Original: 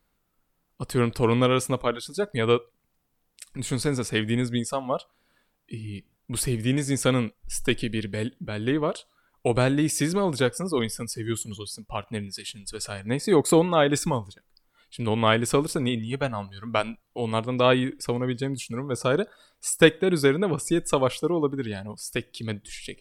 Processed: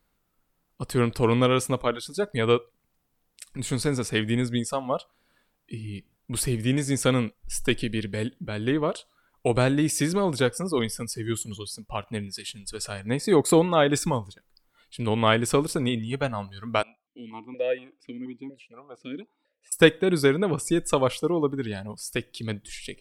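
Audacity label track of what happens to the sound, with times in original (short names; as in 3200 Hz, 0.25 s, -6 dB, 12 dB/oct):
16.830000	19.720000	vowel sequencer 4.2 Hz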